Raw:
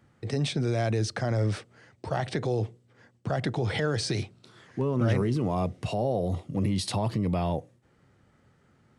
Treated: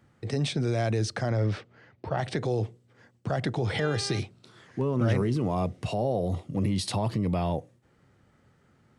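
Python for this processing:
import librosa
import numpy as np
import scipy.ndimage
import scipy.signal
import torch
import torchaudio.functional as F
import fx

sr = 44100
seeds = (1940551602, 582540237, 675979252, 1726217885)

y = fx.lowpass(x, sr, hz=fx.line((1.29, 5200.0), (2.17, 2900.0)), slope=12, at=(1.29, 2.17), fade=0.02)
y = fx.dmg_buzz(y, sr, base_hz=400.0, harmonics=10, level_db=-41.0, tilt_db=-4, odd_only=False, at=(3.78, 4.18), fade=0.02)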